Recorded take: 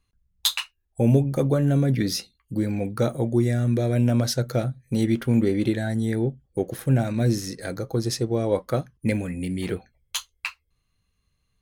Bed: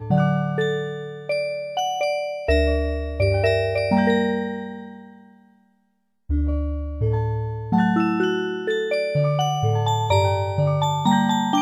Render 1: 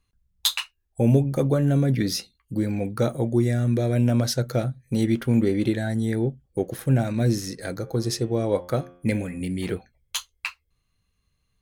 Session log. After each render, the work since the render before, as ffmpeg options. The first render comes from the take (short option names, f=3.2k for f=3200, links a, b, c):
-filter_complex "[0:a]asettb=1/sr,asplit=3[a][b][c];[a]atrim=end=7.764[d];[b]atrim=start=7.76:end=9.41,asetpts=PTS-STARTPTS,afade=t=in:d=0.004:c=qsin,afade=t=out:st=1.646:d=0.004:c=qsin,bandreject=f=88.55:t=h:w=4,bandreject=f=177.1:t=h:w=4,bandreject=f=265.65:t=h:w=4,bandreject=f=354.2:t=h:w=4,bandreject=f=442.75:t=h:w=4,bandreject=f=531.3:t=h:w=4,bandreject=f=619.85:t=h:w=4,bandreject=f=708.4:t=h:w=4,bandreject=f=796.95:t=h:w=4,bandreject=f=885.5:t=h:w=4,bandreject=f=974.05:t=h:w=4,bandreject=f=1.0626k:t=h:w=4,bandreject=f=1.15115k:t=h:w=4,bandreject=f=1.2397k:t=h:w=4,bandreject=f=1.32825k:t=h:w=4,bandreject=f=1.4168k:t=h:w=4,bandreject=f=1.50535k:t=h:w=4,bandreject=f=1.5939k:t=h:w=4,bandreject=f=1.68245k:t=h:w=4,bandreject=f=1.771k:t=h:w=4,bandreject=f=1.85955k:t=h:w=4,bandreject=f=1.9481k:t=h:w=4,bandreject=f=2.03665k:t=h:w=4,bandreject=f=2.1252k:t=h:w=4,bandreject=f=2.21375k:t=h:w=4,bandreject=f=2.3023k:t=h:w=4,bandreject=f=2.39085k:t=h:w=4,bandreject=f=2.4794k:t=h:w=4,bandreject=f=2.56795k:t=h:w=4,bandreject=f=2.6565k:t=h:w=4,bandreject=f=2.74505k:t=h:w=4,bandreject=f=2.8336k:t=h:w=4,bandreject=f=2.92215k:t=h:w=4,bandreject=f=3.0107k:t=h:w=4,bandreject=f=3.09925k:t=h:w=4,bandreject=f=3.1878k:t=h:w=4,bandreject=f=3.27635k:t=h:w=4,bandreject=f=3.3649k:t=h:w=4,bandreject=f=3.45345k:t=h:w=4,bandreject=f=3.542k:t=h:w=4[e];[c]atrim=start=9.406[f];[d][e]acrossfade=d=0.004:c1=hsin:c2=qsin[g];[g][f]acrossfade=d=0.004:c1=qsin:c2=hsin"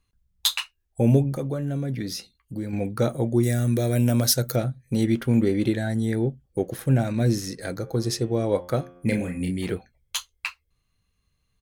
-filter_complex "[0:a]asettb=1/sr,asplit=3[a][b][c];[a]atrim=end=1.354[d];[b]atrim=start=1.35:end=2.73,asetpts=PTS-STARTPTS,afade=t=in:d=0.004:c=qsin,afade=t=out:st=1.376:d=0.004:c=qsin,acompressor=threshold=-37dB:ratio=1.5:attack=3.2:release=140:knee=1:detection=peak[e];[c]atrim=start=2.726[f];[d][e]acrossfade=d=0.004:c1=hsin:c2=qsin[g];[g][f]acrossfade=d=0.004:c1=qsin:c2=hsin,asettb=1/sr,asplit=3[h][i][j];[h]atrim=end=3.434[k];[i]atrim=start=3.43:end=4.56,asetpts=PTS-STARTPTS,afade=t=in:d=0.004:c=qsin,afade=t=out:st=1.126:d=0.004:c=qsin,aemphasis=mode=production:type=50fm[l];[j]atrim=start=4.556[m];[k][l]acrossfade=d=0.004:c1=hsin:c2=qsin[n];[n][m]acrossfade=d=0.004:c1=qsin:c2=hsin,asplit=3[o][p][q];[o]afade=t=out:st=8.95:d=0.02[r];[p]asplit=2[s][t];[t]adelay=34,volume=-5.5dB[u];[s][u]amix=inputs=2:normalize=0,afade=t=in:st=8.95:d=0.02,afade=t=out:st=9.5:d=0.02[v];[q]afade=t=in:st=9.5:d=0.02[w];[r][v][w]amix=inputs=3:normalize=0"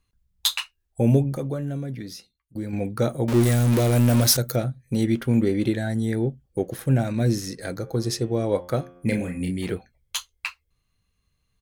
-filter_complex "[0:a]asettb=1/sr,asplit=3[a][b][c];[a]atrim=end=3.284[d];[b]atrim=start=3.28:end=4.37,asetpts=PTS-STARTPTS,afade=t=in:d=0.004:c=qsin,afade=t=out:st=1.086:d=0.004:c=qsin,aeval=exprs='val(0)+0.5*0.0841*sgn(val(0))':c=same[e];[c]atrim=start=4.366[f];[d][e]acrossfade=d=0.004:c1=hsin:c2=qsin[g];[g][f]acrossfade=d=0.004:c1=qsin:c2=hsin,asplit=2[h][i];[h]atrim=end=2.55,asetpts=PTS-STARTPTS,afade=t=out:st=1.53:d=1.02:silence=0.0944061[j];[i]atrim=start=2.55,asetpts=PTS-STARTPTS,afade=t=in:d=0.004:c=hsin:silence=0.0944061[k];[j][k]concat=n=2:v=0:a=1"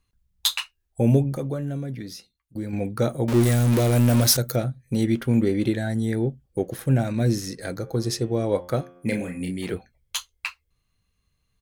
-filter_complex "[0:a]asettb=1/sr,asplit=3[a][b][c];[a]atrim=end=8.824[d];[b]atrim=start=8.82:end=9.74,asetpts=PTS-STARTPTS,afade=t=in:d=0.004:c=qsin,afade=t=out:st=0.916:d=0.004:c=qsin,highpass=f=160:p=1[e];[c]atrim=start=9.736[f];[d][e]acrossfade=d=0.004:c1=hsin:c2=qsin[g];[g][f]acrossfade=d=0.004:c1=qsin:c2=hsin"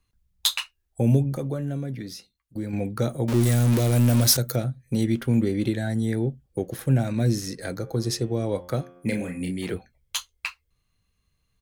-filter_complex "[0:a]acrossover=split=240|3000[a][b][c];[b]acompressor=threshold=-28dB:ratio=2[d];[a][d][c]amix=inputs=3:normalize=0"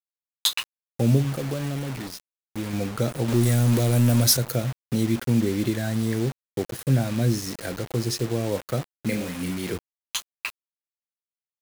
-af "acrusher=bits=5:mix=0:aa=0.000001"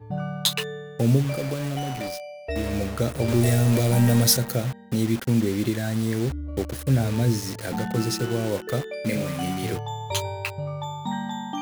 -filter_complex "[1:a]volume=-11dB[a];[0:a][a]amix=inputs=2:normalize=0"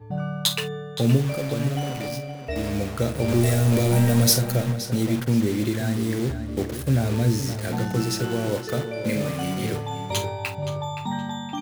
-filter_complex "[0:a]asplit=2[a][b];[b]adelay=48,volume=-12dB[c];[a][c]amix=inputs=2:normalize=0,asplit=2[d][e];[e]adelay=521,lowpass=f=4.1k:p=1,volume=-9.5dB,asplit=2[f][g];[g]adelay=521,lowpass=f=4.1k:p=1,volume=0.33,asplit=2[h][i];[i]adelay=521,lowpass=f=4.1k:p=1,volume=0.33,asplit=2[j][k];[k]adelay=521,lowpass=f=4.1k:p=1,volume=0.33[l];[d][f][h][j][l]amix=inputs=5:normalize=0"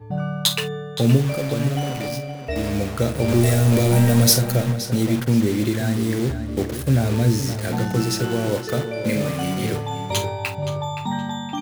-af "volume=3dB"